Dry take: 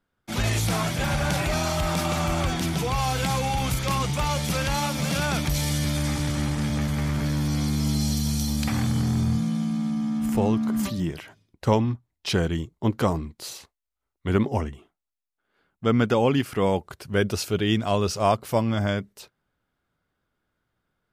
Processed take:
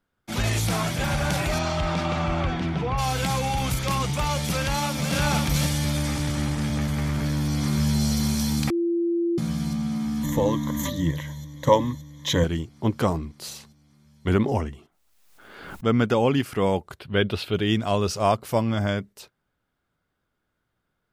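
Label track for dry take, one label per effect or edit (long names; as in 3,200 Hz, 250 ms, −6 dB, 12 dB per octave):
1.580000	2.970000	low-pass filter 5,400 Hz → 2,100 Hz
4.600000	5.140000	delay throw 520 ms, feedback 25%, level −2.5 dB
7.050000	8.020000	delay throw 570 ms, feedback 70%, level −3.5 dB
8.700000	9.380000	beep over 341 Hz −20.5 dBFS
10.230000	12.440000	EQ curve with evenly spaced ripples crests per octave 1.1, crest to trough 16 dB
14.270000	15.850000	background raised ahead of every attack at most 41 dB per second
16.990000	17.540000	high shelf with overshoot 4,700 Hz −10 dB, Q 3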